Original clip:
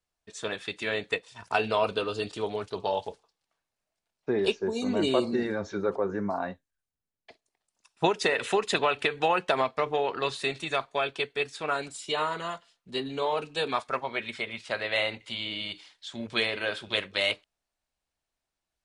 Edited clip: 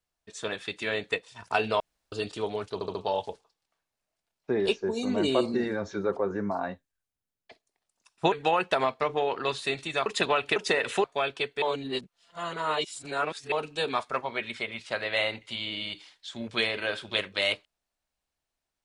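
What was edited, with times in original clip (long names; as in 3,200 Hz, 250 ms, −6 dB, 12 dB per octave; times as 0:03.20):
0:01.80–0:02.12: fill with room tone
0:02.74: stutter 0.07 s, 4 plays
0:08.11–0:08.59: swap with 0:09.09–0:10.83
0:11.41–0:13.31: reverse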